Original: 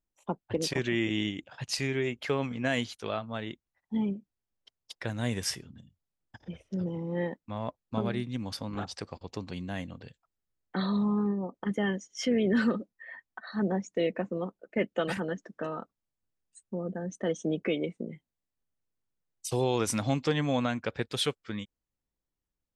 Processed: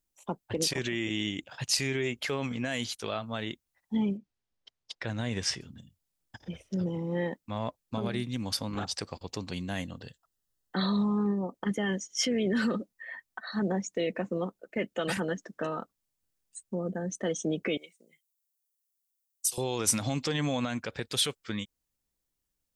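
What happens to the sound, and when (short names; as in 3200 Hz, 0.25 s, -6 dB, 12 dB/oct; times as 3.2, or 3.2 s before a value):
4.17–5.61 Gaussian blur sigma 1.5 samples
9.85–10.78 Butterworth band-stop 2300 Hz, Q 5.4
17.77–19.58 differentiator
whole clip: limiter -22.5 dBFS; high shelf 3900 Hz +10 dB; gain +1.5 dB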